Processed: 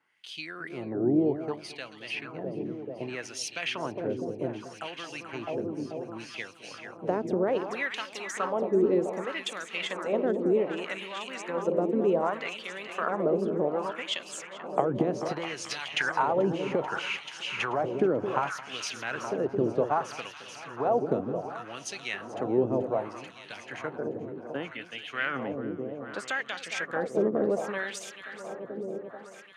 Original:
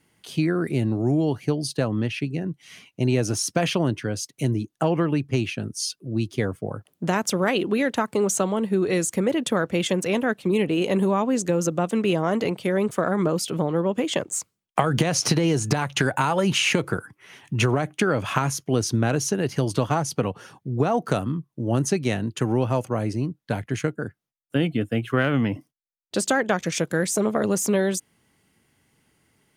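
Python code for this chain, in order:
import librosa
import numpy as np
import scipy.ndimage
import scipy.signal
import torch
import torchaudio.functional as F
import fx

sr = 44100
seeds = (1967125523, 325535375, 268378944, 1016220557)

y = fx.echo_alternate(x, sr, ms=218, hz=940.0, feedback_pct=86, wet_db=-7.5)
y = fx.filter_lfo_bandpass(y, sr, shape='sine', hz=0.65, low_hz=360.0, high_hz=3300.0, q=1.7)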